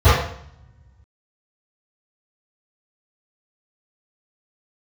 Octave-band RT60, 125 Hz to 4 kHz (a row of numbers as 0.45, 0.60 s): 1.9, 1.4, 0.60, 0.65, 0.65, 0.60 s